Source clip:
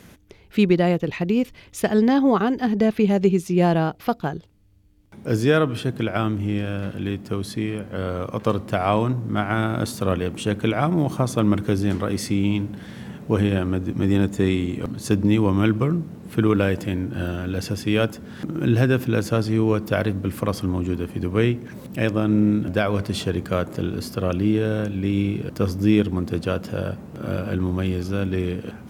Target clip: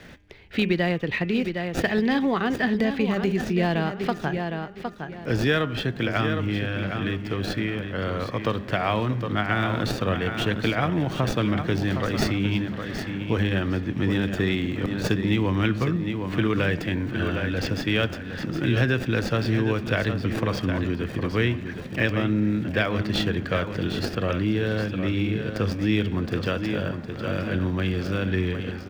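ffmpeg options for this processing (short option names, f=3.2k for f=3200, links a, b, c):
-filter_complex "[0:a]highshelf=f=2.7k:g=11,asplit=2[a][b];[b]aecho=0:1:761|1522|2283:0.355|0.0816|0.0188[c];[a][c]amix=inputs=2:normalize=0,acrossover=split=120|3000[d][e][f];[e]acompressor=threshold=-22dB:ratio=2[g];[d][g][f]amix=inputs=3:normalize=0,equalizer=f=1.8k:w=3.5:g=7.5,bandreject=f=202.2:t=h:w=4,bandreject=f=404.4:t=h:w=4,bandreject=f=606.6:t=h:w=4,bandreject=f=808.8:t=h:w=4,bandreject=f=1.011k:t=h:w=4,bandreject=f=1.2132k:t=h:w=4,bandreject=f=1.4154k:t=h:w=4,bandreject=f=1.6176k:t=h:w=4,bandreject=f=1.8198k:t=h:w=4,bandreject=f=2.022k:t=h:w=4,bandreject=f=2.2242k:t=h:w=4,bandreject=f=2.4264k:t=h:w=4,bandreject=f=2.6286k:t=h:w=4,bandreject=f=2.8308k:t=h:w=4,bandreject=f=3.033k:t=h:w=4,bandreject=f=3.2352k:t=h:w=4,acrossover=split=640|4600[h][i][j];[j]acrusher=samples=42:mix=1:aa=0.000001[k];[h][i][k]amix=inputs=3:normalize=0,volume=-1.5dB"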